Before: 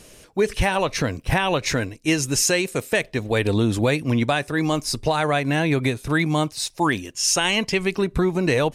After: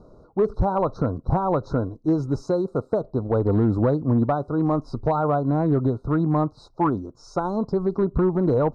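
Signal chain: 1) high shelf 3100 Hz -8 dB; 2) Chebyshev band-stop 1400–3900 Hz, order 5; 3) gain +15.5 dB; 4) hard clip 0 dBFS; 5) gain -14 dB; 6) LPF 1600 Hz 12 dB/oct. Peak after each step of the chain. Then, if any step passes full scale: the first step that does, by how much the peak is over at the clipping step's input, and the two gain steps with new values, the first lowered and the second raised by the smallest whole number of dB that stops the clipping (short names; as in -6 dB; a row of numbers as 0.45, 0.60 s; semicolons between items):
-10.0, -11.0, +4.5, 0.0, -14.0, -13.5 dBFS; step 3, 4.5 dB; step 3 +10.5 dB, step 5 -9 dB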